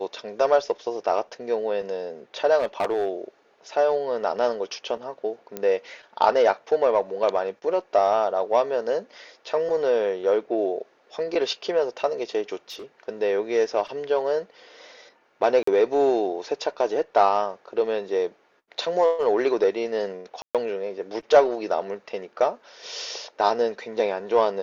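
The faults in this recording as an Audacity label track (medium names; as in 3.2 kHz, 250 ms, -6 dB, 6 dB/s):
2.580000	3.100000	clipped -18.5 dBFS
5.570000	5.570000	pop -15 dBFS
12.700000	12.840000	clipped -33.5 dBFS
15.630000	15.670000	dropout 44 ms
20.420000	20.550000	dropout 127 ms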